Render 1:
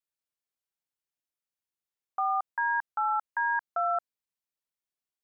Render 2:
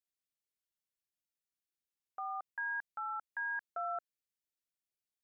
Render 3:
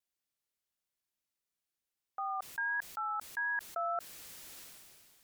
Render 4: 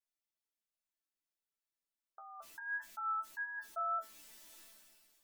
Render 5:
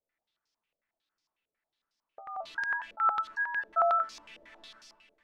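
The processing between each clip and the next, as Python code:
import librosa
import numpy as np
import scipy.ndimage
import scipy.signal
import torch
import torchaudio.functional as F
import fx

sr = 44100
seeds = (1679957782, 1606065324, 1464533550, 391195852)

y1 = fx.peak_eq(x, sr, hz=960.0, db=-14.5, octaves=0.91)
y1 = y1 * 10.0 ** (-3.0 / 20.0)
y2 = fx.vibrato(y1, sr, rate_hz=1.5, depth_cents=31.0)
y2 = fx.sustainer(y2, sr, db_per_s=26.0)
y2 = y2 * 10.0 ** (3.0 / 20.0)
y3 = fx.resonator_bank(y2, sr, root=57, chord='sus4', decay_s=0.21)
y3 = fx.spec_gate(y3, sr, threshold_db=-30, keep='strong')
y3 = y3 * 10.0 ** (8.0 / 20.0)
y4 = fx.filter_held_lowpass(y3, sr, hz=11.0, low_hz=530.0, high_hz=5200.0)
y4 = y4 * 10.0 ** (8.5 / 20.0)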